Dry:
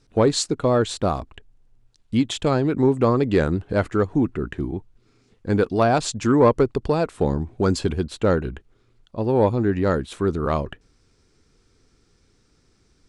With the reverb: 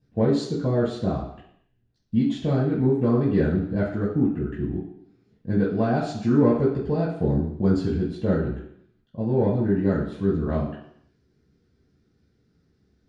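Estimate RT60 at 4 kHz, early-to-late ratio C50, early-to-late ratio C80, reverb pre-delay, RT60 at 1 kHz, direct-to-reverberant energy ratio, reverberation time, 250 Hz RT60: 0.70 s, 4.5 dB, 8.5 dB, 3 ms, 0.70 s, −7.5 dB, 0.70 s, 0.75 s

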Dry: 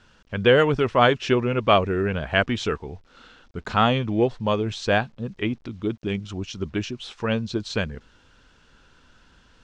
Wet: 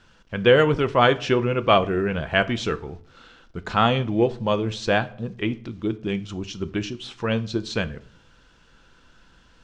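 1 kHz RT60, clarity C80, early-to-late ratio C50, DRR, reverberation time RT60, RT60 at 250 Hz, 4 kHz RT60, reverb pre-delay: 0.50 s, 22.5 dB, 19.0 dB, 11.0 dB, 0.55 s, 0.70 s, 0.40 s, 6 ms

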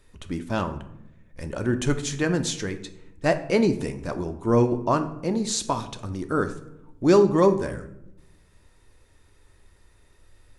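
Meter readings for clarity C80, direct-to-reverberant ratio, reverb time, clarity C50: 15.5 dB, 7.5 dB, 0.85 s, 12.5 dB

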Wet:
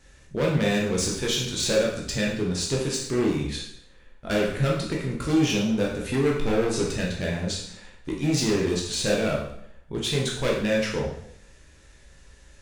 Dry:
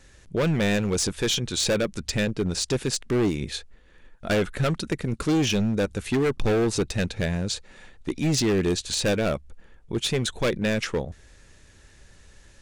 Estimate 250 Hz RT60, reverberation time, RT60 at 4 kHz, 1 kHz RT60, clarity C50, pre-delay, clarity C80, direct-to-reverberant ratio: 0.75 s, 0.70 s, 0.65 s, 0.70 s, 3.5 dB, 7 ms, 7.5 dB, −3.0 dB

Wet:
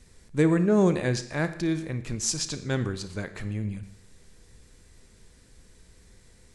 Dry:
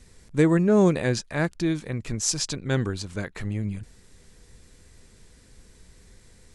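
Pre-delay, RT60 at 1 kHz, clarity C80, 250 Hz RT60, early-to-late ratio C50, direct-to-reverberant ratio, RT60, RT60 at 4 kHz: 31 ms, 0.70 s, 15.0 dB, 0.70 s, 12.5 dB, 11.0 dB, 0.70 s, 0.65 s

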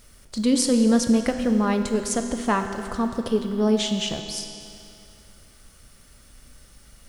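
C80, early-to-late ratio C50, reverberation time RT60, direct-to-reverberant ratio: 7.5 dB, 7.0 dB, 2.6 s, 5.5 dB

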